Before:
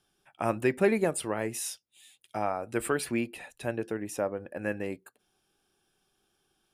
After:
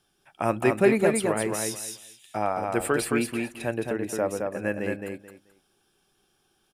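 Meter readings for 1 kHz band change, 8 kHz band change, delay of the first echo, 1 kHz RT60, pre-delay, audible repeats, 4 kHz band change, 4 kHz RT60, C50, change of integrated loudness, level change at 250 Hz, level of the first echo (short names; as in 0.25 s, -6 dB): +5.0 dB, +5.0 dB, 0.217 s, none, none, 3, +5.0 dB, none, none, +5.0 dB, +5.0 dB, -4.0 dB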